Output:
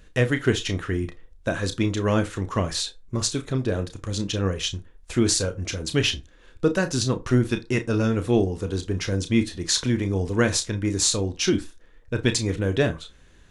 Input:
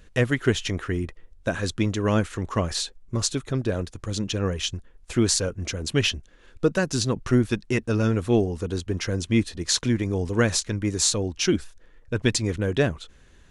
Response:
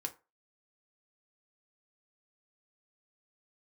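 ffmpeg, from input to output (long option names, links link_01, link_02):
-filter_complex "[0:a]asplit=2[link_01][link_02];[link_02]equalizer=frequency=3600:width_type=o:width=0.23:gain=8.5[link_03];[1:a]atrim=start_sample=2205,adelay=31[link_04];[link_03][link_04]afir=irnorm=-1:irlink=0,volume=-8.5dB[link_05];[link_01][link_05]amix=inputs=2:normalize=0"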